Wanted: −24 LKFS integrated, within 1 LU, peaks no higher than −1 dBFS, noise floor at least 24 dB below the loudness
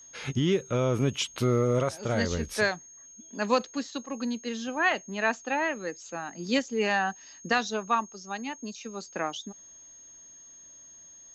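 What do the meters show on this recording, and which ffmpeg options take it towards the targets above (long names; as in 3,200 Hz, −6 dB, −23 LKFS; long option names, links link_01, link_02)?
interfering tone 6,500 Hz; level of the tone −48 dBFS; integrated loudness −29.0 LKFS; sample peak −12.0 dBFS; target loudness −24.0 LKFS
→ -af "bandreject=frequency=6500:width=30"
-af "volume=5dB"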